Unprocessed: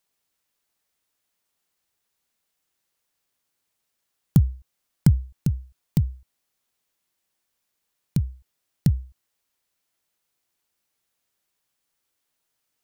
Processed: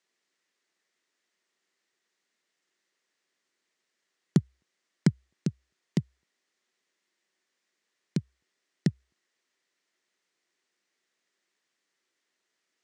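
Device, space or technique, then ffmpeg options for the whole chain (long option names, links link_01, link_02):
television speaker: -af "highpass=frequency=180:width=0.5412,highpass=frequency=180:width=1.3066,equalizer=frequency=370:width_type=q:width=4:gain=7,equalizer=frequency=830:width_type=q:width=4:gain=-4,equalizer=frequency=1900:width_type=q:width=4:gain=8,lowpass=frequency=7400:width=0.5412,lowpass=frequency=7400:width=1.3066"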